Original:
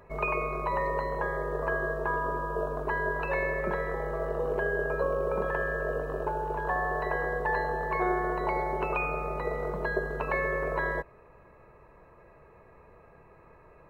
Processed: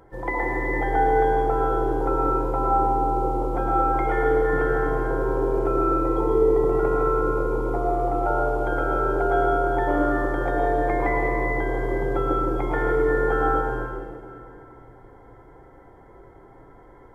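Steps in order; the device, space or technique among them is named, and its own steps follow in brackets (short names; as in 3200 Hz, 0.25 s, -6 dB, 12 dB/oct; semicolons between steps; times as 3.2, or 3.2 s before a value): slowed and reverbed (varispeed -19%; reverb RT60 2.4 s, pre-delay 0.101 s, DRR -2 dB); gain +2 dB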